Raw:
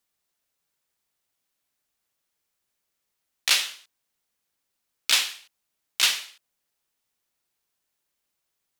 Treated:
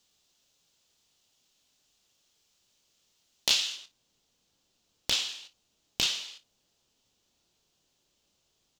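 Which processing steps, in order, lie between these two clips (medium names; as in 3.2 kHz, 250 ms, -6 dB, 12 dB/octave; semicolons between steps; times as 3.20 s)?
high-order bell 4.5 kHz +13.5 dB; compression 4:1, threshold -25 dBFS, peak gain reduction 18 dB; wavefolder -11.5 dBFS; tilt shelf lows +5.5 dB, about 1.1 kHz, from 3.75 s lows +9.5 dB; early reflections 25 ms -10.5 dB, 56 ms -17.5 dB; trim +4.5 dB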